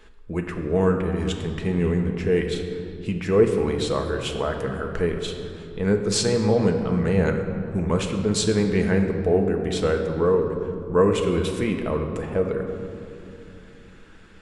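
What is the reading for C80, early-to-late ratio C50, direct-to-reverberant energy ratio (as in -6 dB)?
7.0 dB, 6.0 dB, 3.0 dB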